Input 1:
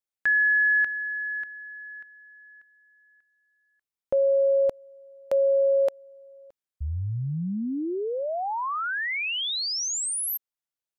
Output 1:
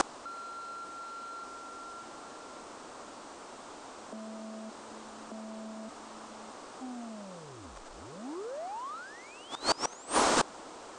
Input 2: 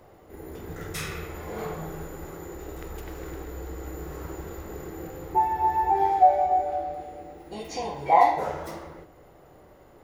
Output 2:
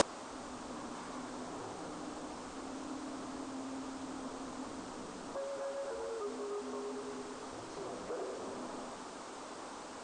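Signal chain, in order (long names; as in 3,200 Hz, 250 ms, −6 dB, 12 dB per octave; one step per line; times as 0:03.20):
downward compressor 10 to 1, threshold −32 dBFS
delay with a high-pass on its return 71 ms, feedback 49%, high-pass 3,800 Hz, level −18 dB
bit-depth reduction 6 bits, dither triangular
frequency shifter −330 Hz
brickwall limiter −25 dBFS
sine wavefolder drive 10 dB, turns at −25 dBFS
flat-topped bell 560 Hz +15 dB 2.9 octaves
gate with flip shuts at −16 dBFS, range −26 dB
Butterworth low-pass 8,800 Hz 72 dB per octave
level +3.5 dB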